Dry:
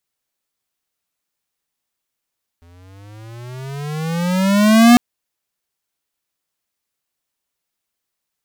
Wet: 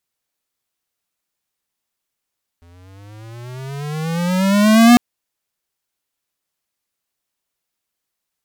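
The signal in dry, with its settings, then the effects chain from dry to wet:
gliding synth tone square, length 2.35 s, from 83.9 Hz, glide +18.5 st, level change +40 dB, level -6.5 dB
vibrato 8.4 Hz 11 cents

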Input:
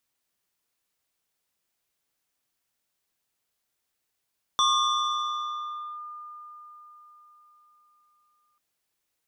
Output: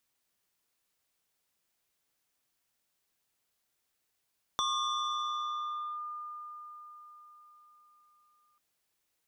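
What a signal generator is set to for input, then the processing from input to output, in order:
FM tone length 3.99 s, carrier 1.21 kHz, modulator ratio 1.9, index 1.5, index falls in 1.40 s linear, decay 4.71 s, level -18 dB
compression 2.5:1, threshold -35 dBFS

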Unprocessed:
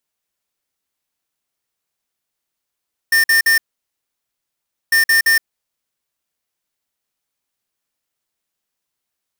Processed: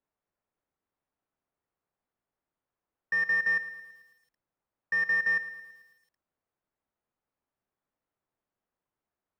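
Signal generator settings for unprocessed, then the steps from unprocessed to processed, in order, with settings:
beep pattern square 1.81 kHz, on 0.12 s, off 0.05 s, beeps 3, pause 1.34 s, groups 2, -12.5 dBFS
low-pass 1.2 kHz 12 dB/octave; peak limiter -21.5 dBFS; bit-crushed delay 110 ms, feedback 55%, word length 10-bit, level -14 dB

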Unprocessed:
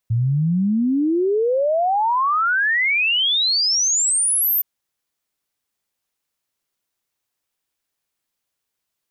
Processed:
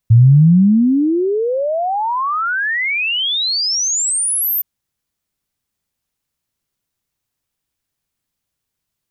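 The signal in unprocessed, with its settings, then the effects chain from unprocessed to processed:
log sweep 110 Hz -> 14 kHz 4.52 s -15.5 dBFS
tone controls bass +12 dB, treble +1 dB

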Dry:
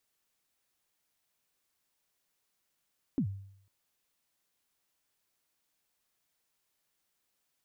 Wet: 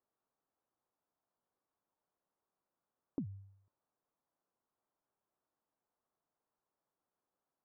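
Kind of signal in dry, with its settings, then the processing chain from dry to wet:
kick drum length 0.50 s, from 310 Hz, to 98 Hz, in 84 ms, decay 0.68 s, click off, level -24 dB
low-pass 1.2 kHz 24 dB/octave; bass shelf 120 Hz -11 dB; compression, threshold -36 dBFS

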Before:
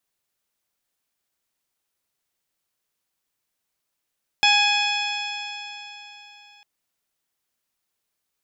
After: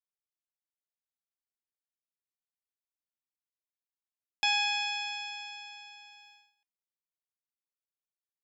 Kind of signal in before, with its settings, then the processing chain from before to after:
stretched partials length 2.20 s, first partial 823 Hz, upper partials -5/3/1.5/-12.5/-3/-18/-12.5 dB, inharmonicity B 0.0031, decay 3.60 s, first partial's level -20 dB
gate -47 dBFS, range -19 dB; feedback comb 350 Hz, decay 0.31 s, harmonics all, mix 70%

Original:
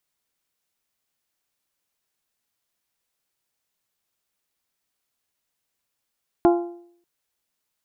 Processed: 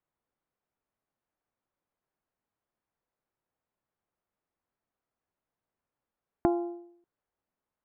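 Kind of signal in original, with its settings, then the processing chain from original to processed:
metal hit bell, length 0.59 s, lowest mode 346 Hz, modes 5, decay 0.63 s, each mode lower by 5.5 dB, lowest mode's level -11 dB
low-pass 1.2 kHz 12 dB/octave; compression 4:1, threshold -24 dBFS

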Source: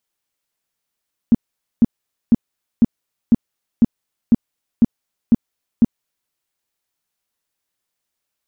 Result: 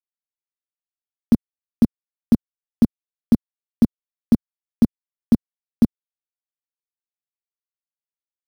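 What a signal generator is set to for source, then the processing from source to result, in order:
tone bursts 232 Hz, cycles 6, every 0.50 s, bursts 10, -6 dBFS
bit crusher 6-bit; three bands compressed up and down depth 40%

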